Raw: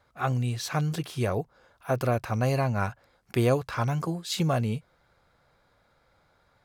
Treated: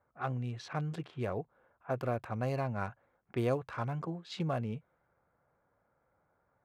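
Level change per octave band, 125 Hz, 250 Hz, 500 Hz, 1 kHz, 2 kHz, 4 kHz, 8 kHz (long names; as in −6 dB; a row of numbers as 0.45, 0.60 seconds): −9.5 dB, −8.0 dB, −7.5 dB, −7.5 dB, −9.0 dB, −13.0 dB, below −15 dB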